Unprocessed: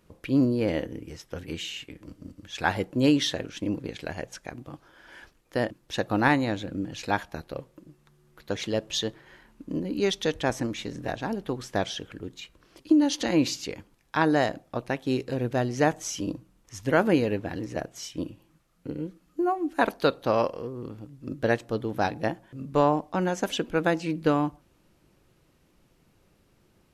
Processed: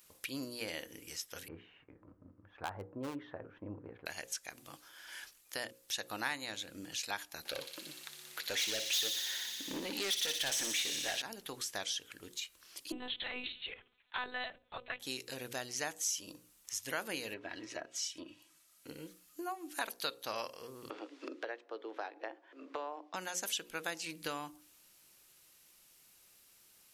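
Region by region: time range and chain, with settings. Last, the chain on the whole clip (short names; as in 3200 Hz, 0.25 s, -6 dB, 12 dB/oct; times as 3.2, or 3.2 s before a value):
1.48–4.06 LPF 1200 Hz 24 dB/oct + bell 100 Hz +10.5 dB 0.28 oct + hard clip -16.5 dBFS
7.45–11.22 overdrive pedal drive 27 dB, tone 1700 Hz, clips at -11.5 dBFS + bell 1100 Hz -7 dB 0.7 oct + thin delay 60 ms, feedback 81%, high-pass 3100 Hz, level -4.5 dB
12.92–15 low shelf 370 Hz -6 dB + notches 60/120/180/240/300 Hz + monotone LPC vocoder at 8 kHz 250 Hz
17.33–18.87 treble ducked by the level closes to 1900 Hz, closed at -26.5 dBFS + low shelf 75 Hz -11 dB + comb 3.1 ms, depth 44%
20.9–23.14 steep high-pass 300 Hz 48 dB/oct + tape spacing loss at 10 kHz 44 dB + three-band squash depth 100%
whole clip: pre-emphasis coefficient 0.97; notches 60/120/180/240/300/360/420/480/540 Hz; compressor 2:1, threshold -53 dBFS; gain +11.5 dB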